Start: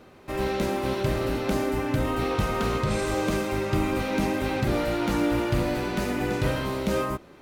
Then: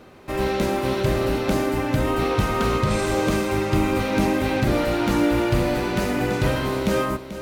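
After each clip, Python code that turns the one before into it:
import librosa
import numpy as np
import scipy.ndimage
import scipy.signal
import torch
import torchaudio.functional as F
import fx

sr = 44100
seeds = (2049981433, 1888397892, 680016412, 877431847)

y = x + 10.0 ** (-12.0 / 20.0) * np.pad(x, (int(438 * sr / 1000.0), 0))[:len(x)]
y = y * 10.0 ** (4.0 / 20.0)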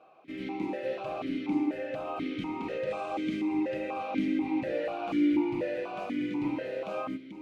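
y = x + 0.37 * np.pad(x, (int(6.2 * sr / 1000.0), 0))[:len(x)]
y = fx.vowel_held(y, sr, hz=4.1)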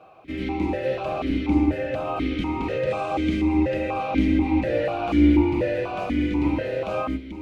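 y = fx.octave_divider(x, sr, octaves=2, level_db=-4.0)
y = y * 10.0 ** (8.0 / 20.0)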